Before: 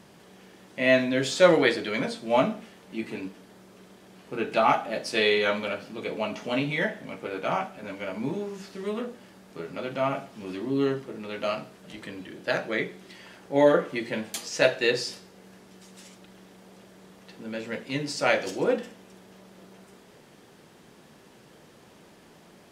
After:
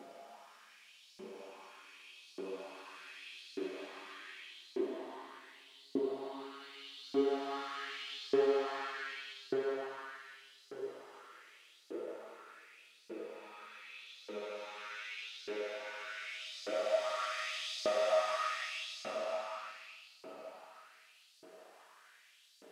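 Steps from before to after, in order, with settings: self-modulated delay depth 0.52 ms; Paulstretch 15×, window 0.25 s, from 10.30 s; LFO high-pass saw up 0.84 Hz 340–4800 Hz; trim -8 dB

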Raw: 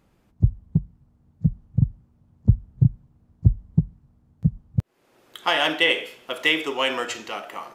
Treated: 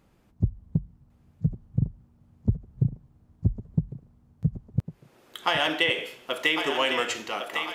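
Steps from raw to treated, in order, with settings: compression 4:1, threshold -20 dBFS, peak gain reduction 10 dB; on a send: thinning echo 1103 ms, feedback 49%, high-pass 420 Hz, level -6.5 dB

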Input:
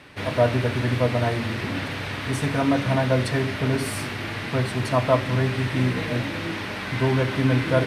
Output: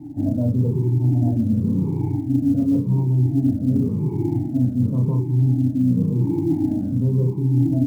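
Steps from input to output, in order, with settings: drifting ripple filter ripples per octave 0.75, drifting -0.92 Hz, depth 22 dB; saturation -6 dBFS, distortion -20 dB; cascade formant filter u; bass shelf 440 Hz +11 dB; doubling 32 ms -4 dB; short-mantissa float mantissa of 4-bit; peaking EQ 140 Hz +12 dB 1.8 oct; reverse; compression 6:1, threshold -16 dBFS, peak gain reduction 15.5 dB; reverse

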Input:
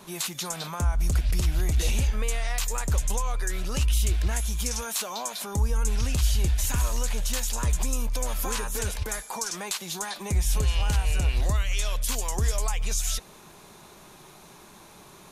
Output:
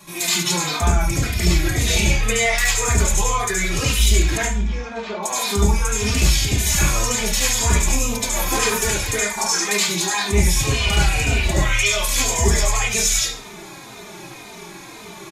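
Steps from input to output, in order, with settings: 4.37–5.23 s: tape spacing loss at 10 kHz 45 dB; reverberation RT60 0.45 s, pre-delay 69 ms, DRR -10.5 dB; endless flanger 3.1 ms -1.9 Hz; trim +7.5 dB

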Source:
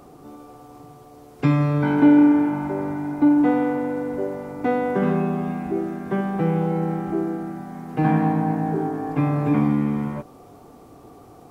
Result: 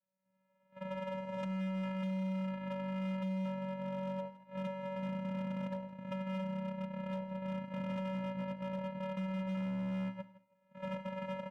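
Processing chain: recorder AGC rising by 29 dB/s; gate -18 dBFS, range -41 dB; three-band isolator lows -13 dB, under 500 Hz, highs -13 dB, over 2.1 kHz; compression 16:1, threshold -33 dBFS, peak gain reduction 17 dB; vocoder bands 4, square 189 Hz; hard clipper -36 dBFS, distortion -13 dB; feedback delay 163 ms, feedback 21%, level -17.5 dB; on a send at -19 dB: reverberation, pre-delay 3 ms; on the sum: trim +1 dB

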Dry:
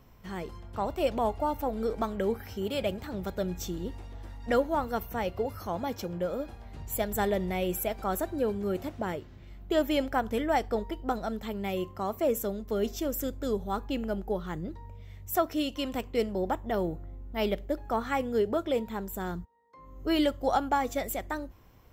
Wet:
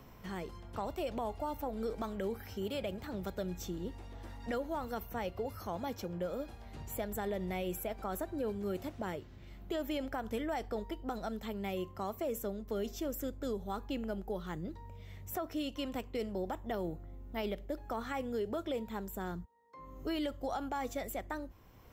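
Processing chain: peak limiter -22 dBFS, peak gain reduction 7.5 dB; three bands compressed up and down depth 40%; trim -6 dB

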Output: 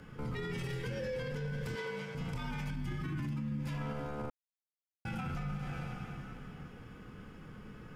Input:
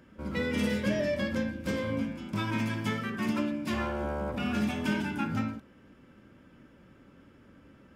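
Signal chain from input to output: 2.70–3.59 s: resonant low shelf 460 Hz +6.5 dB, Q 3; frequency shift -77 Hz; plate-style reverb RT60 3.1 s, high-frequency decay 0.95×, DRR 7.5 dB; compression 2.5:1, threshold -38 dBFS, peak gain reduction 15 dB; 1.75–2.15 s: frequency weighting A; peak limiter -36 dBFS, peak gain reduction 11.5 dB; 4.30–5.05 s: mute; trim +5.5 dB

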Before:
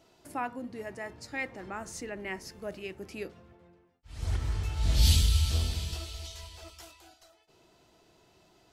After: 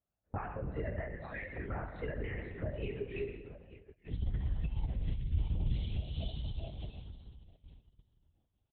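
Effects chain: spectral noise reduction 23 dB; low-pass that closes with the level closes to 1.9 kHz, closed at -23.5 dBFS; feedback delay 875 ms, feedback 32%, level -20 dB; compression 16:1, threshold -35 dBFS, peak gain reduction 18 dB; fifteen-band graphic EQ 100 Hz -11 dB, 250 Hz -6 dB, 1.6 kHz +5 dB; Schroeder reverb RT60 1.4 s, combs from 25 ms, DRR 6.5 dB; LPC vocoder at 8 kHz whisper; peak limiter -33.5 dBFS, peak gain reduction 8.5 dB; high-pass 45 Hz 12 dB/octave; tilt EQ -3 dB/octave; gate -55 dBFS, range -12 dB; random flutter of the level, depth 55%; trim +4 dB

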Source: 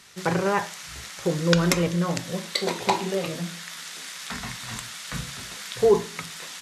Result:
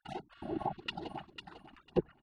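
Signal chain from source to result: spectral gate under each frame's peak -30 dB weak; peaking EQ 1.4 kHz +13.5 dB 0.59 oct; small resonant body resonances 960/3100 Hz, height 16 dB, ringing for 80 ms; wide varispeed 2.97×; LFO low-pass saw down 3.4 Hz 290–1600 Hz; spectral replace 0.38–0.74 s, 1.1–8.9 kHz before; feedback delay 499 ms, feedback 17%, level -9 dB; low-pass that closes with the level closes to 990 Hz, closed at -44 dBFS; trim +17.5 dB

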